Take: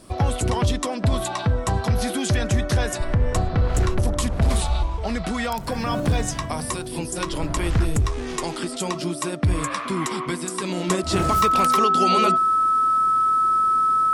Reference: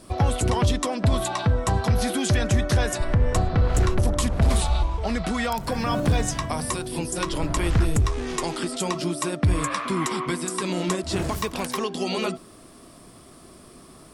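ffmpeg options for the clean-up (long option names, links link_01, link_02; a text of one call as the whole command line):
ffmpeg -i in.wav -af "bandreject=frequency=1300:width=30,asetnsamples=nb_out_samples=441:pad=0,asendcmd='10.9 volume volume -4dB',volume=0dB" out.wav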